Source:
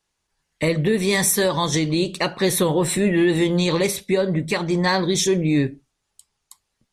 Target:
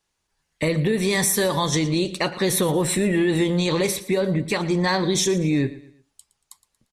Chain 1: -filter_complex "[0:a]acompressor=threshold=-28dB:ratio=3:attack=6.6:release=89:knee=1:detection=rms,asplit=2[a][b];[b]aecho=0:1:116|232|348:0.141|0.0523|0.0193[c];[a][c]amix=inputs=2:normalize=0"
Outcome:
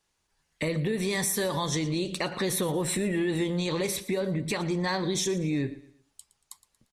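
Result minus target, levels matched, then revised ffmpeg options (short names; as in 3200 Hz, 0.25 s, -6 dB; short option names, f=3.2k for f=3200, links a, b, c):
compressor: peak gain reduction +7.5 dB
-filter_complex "[0:a]acompressor=threshold=-17dB:ratio=3:attack=6.6:release=89:knee=1:detection=rms,asplit=2[a][b];[b]aecho=0:1:116|232|348:0.141|0.0523|0.0193[c];[a][c]amix=inputs=2:normalize=0"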